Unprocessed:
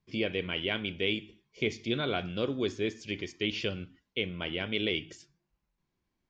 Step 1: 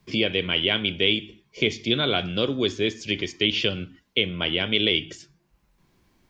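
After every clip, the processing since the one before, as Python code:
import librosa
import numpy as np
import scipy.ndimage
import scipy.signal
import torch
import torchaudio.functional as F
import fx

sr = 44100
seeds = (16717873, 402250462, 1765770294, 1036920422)

y = fx.dynamic_eq(x, sr, hz=3300.0, q=2.8, threshold_db=-47.0, ratio=4.0, max_db=7)
y = fx.band_squash(y, sr, depth_pct=40)
y = y * 10.0 ** (6.5 / 20.0)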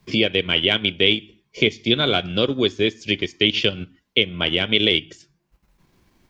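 y = fx.transient(x, sr, attack_db=1, sustain_db=-8)
y = y * 10.0 ** (4.0 / 20.0)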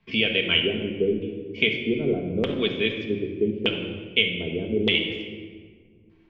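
y = fx.filter_lfo_lowpass(x, sr, shape='square', hz=0.82, low_hz=390.0, high_hz=2700.0, q=2.4)
y = fx.room_shoebox(y, sr, seeds[0], volume_m3=2000.0, walls='mixed', distance_m=1.6)
y = y * 10.0 ** (-8.5 / 20.0)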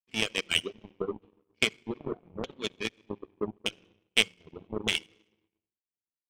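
y = fx.power_curve(x, sr, exponent=2.0)
y = fx.dereverb_blind(y, sr, rt60_s=1.8)
y = fx.volume_shaper(y, sr, bpm=83, per_beat=1, depth_db=-9, release_ms=114.0, shape='fast start')
y = y * 10.0 ** (3.0 / 20.0)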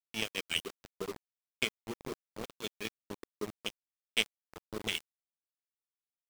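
y = fx.quant_dither(x, sr, seeds[1], bits=6, dither='none')
y = y * 10.0 ** (-6.5 / 20.0)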